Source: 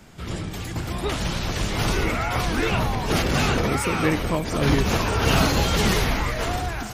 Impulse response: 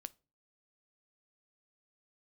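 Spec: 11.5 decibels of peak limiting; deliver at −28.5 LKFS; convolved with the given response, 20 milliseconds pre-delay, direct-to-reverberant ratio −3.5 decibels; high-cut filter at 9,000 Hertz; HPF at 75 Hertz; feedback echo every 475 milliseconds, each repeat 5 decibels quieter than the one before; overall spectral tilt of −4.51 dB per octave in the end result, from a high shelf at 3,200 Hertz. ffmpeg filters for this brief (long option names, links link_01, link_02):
-filter_complex "[0:a]highpass=75,lowpass=9000,highshelf=frequency=3200:gain=-5,alimiter=limit=-18.5dB:level=0:latency=1,aecho=1:1:475|950|1425|1900|2375|2850|3325:0.562|0.315|0.176|0.0988|0.0553|0.031|0.0173,asplit=2[link_01][link_02];[1:a]atrim=start_sample=2205,adelay=20[link_03];[link_02][link_03]afir=irnorm=-1:irlink=0,volume=8.5dB[link_04];[link_01][link_04]amix=inputs=2:normalize=0,volume=-7dB"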